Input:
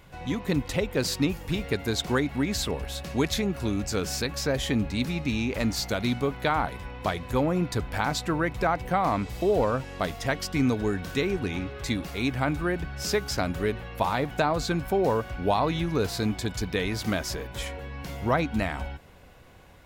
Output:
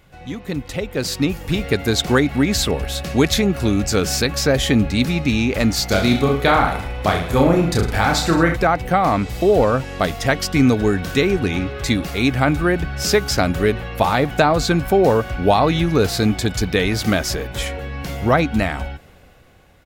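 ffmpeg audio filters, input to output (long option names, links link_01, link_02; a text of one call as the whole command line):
ffmpeg -i in.wav -filter_complex "[0:a]bandreject=frequency=980:width=9.8,asplit=3[link_01][link_02][link_03];[link_01]afade=type=out:start_time=5.9:duration=0.02[link_04];[link_02]aecho=1:1:30|66|109.2|161|223.2:0.631|0.398|0.251|0.158|0.1,afade=type=in:start_time=5.9:duration=0.02,afade=type=out:start_time=8.55:duration=0.02[link_05];[link_03]afade=type=in:start_time=8.55:duration=0.02[link_06];[link_04][link_05][link_06]amix=inputs=3:normalize=0,dynaudnorm=framelen=120:gausssize=21:maxgain=11.5dB" out.wav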